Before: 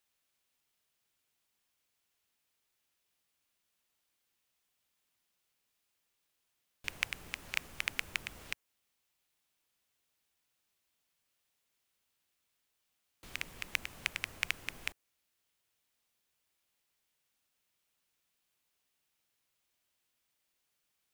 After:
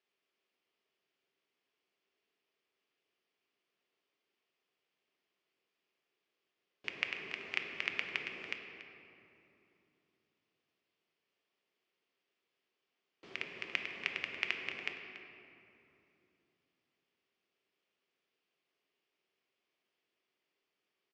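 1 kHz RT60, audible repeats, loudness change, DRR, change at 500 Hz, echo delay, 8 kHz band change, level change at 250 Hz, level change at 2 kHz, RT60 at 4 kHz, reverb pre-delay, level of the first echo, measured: 2.8 s, 1, -0.5 dB, 3.5 dB, +6.0 dB, 284 ms, -15.0 dB, +2.5 dB, +0.5 dB, 1.5 s, 4 ms, -13.0 dB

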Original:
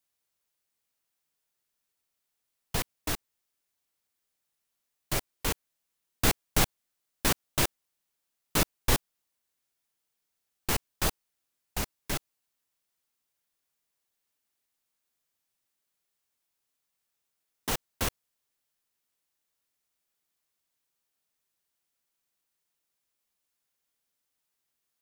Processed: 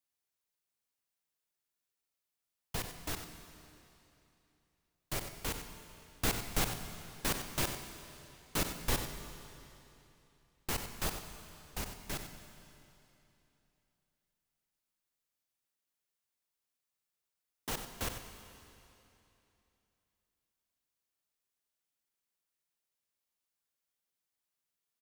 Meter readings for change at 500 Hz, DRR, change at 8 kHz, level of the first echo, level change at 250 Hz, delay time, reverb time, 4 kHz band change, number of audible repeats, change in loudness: -6.5 dB, 5.5 dB, -6.5 dB, -10.0 dB, -6.5 dB, 93 ms, 3.0 s, -6.5 dB, 1, -7.5 dB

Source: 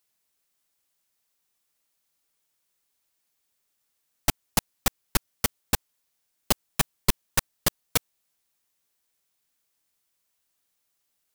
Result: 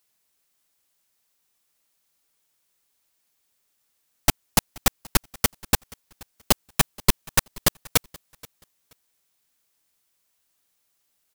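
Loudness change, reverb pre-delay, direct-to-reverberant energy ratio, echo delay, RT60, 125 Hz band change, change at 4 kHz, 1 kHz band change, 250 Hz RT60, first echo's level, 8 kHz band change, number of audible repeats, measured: +4.0 dB, no reverb, no reverb, 478 ms, no reverb, +4.0 dB, +4.0 dB, +4.0 dB, no reverb, -24.0 dB, +4.0 dB, 1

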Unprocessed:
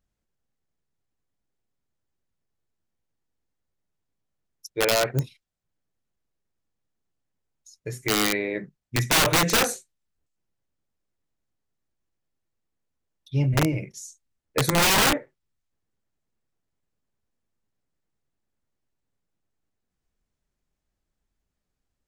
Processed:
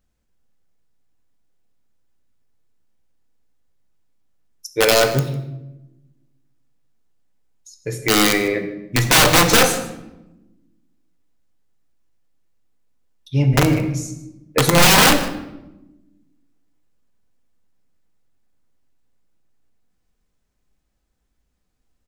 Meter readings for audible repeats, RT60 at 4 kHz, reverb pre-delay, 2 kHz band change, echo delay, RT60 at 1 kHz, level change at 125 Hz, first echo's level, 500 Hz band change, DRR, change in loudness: 1, 0.60 s, 4 ms, +7.5 dB, 153 ms, 0.85 s, +7.0 dB, -18.5 dB, +8.0 dB, 6.0 dB, +7.0 dB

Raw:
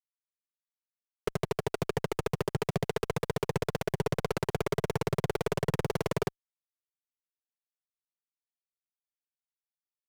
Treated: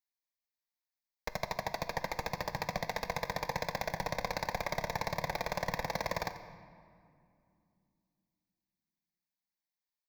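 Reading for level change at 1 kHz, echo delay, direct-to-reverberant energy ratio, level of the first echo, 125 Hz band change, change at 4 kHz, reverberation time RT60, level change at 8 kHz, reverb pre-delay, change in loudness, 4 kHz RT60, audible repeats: +1.5 dB, 88 ms, 9.0 dB, -15.0 dB, -10.5 dB, 0.0 dB, 2.5 s, -2.0 dB, 4 ms, -4.0 dB, 1.4 s, 1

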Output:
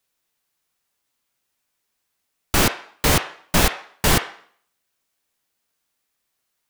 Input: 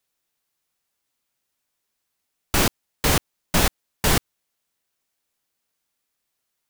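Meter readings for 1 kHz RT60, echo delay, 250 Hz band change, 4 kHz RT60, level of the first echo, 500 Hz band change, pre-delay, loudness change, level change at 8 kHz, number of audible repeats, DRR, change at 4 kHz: 0.55 s, no echo, +2.0 dB, 0.50 s, no echo, +2.5 dB, 6 ms, +2.5 dB, +2.0 dB, no echo, 6.0 dB, +2.5 dB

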